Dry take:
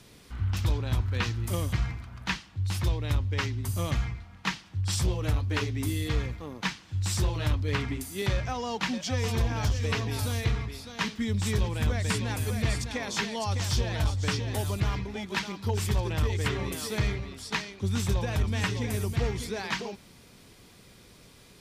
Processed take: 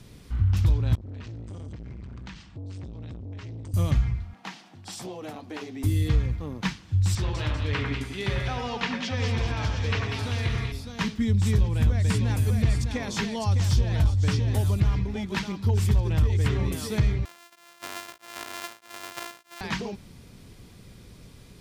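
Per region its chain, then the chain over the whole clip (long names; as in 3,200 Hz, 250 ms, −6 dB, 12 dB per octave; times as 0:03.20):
0:00.95–0:03.74: elliptic low-pass filter 8,400 Hz + downward compressor 8 to 1, threshold −38 dBFS + saturating transformer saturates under 670 Hz
0:04.33–0:05.84: high-pass filter 220 Hz 24 dB per octave + parametric band 730 Hz +10.5 dB 0.44 octaves + downward compressor 2 to 1, threshold −40 dBFS
0:07.15–0:10.72: low-pass filter 3,200 Hz + spectral tilt +3 dB per octave + echo with a time of its own for lows and highs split 2,200 Hz, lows 95 ms, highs 195 ms, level −4.5 dB
0:17.25–0:19.61: samples sorted by size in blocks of 128 samples + high-pass filter 1,000 Hz + tremolo along a rectified sine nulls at 1.6 Hz
whole clip: low-shelf EQ 250 Hz +12 dB; downward compressor 2 to 1, threshold −19 dBFS; level −1 dB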